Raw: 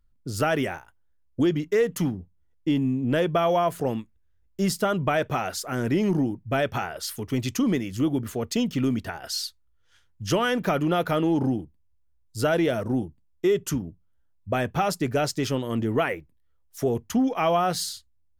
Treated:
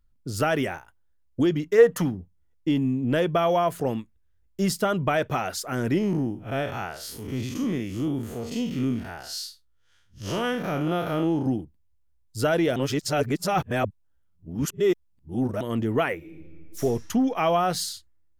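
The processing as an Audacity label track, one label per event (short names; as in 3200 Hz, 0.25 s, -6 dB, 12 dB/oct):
1.780000	2.030000	spectral gain 450–1900 Hz +8 dB
5.980000	11.460000	time blur width 0.119 s
12.760000	15.610000	reverse
16.160000	16.800000	reverb throw, RT60 2.4 s, DRR -3.5 dB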